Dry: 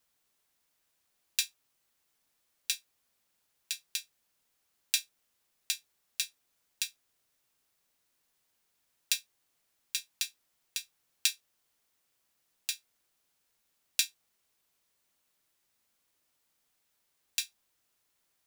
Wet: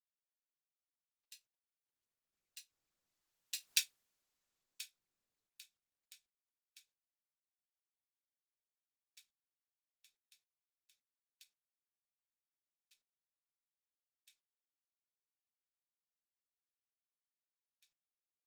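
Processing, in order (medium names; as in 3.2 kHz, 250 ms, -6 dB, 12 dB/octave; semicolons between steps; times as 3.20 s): Doppler pass-by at 3.75 s, 16 m/s, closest 1.1 m; trim +5.5 dB; Opus 16 kbps 48 kHz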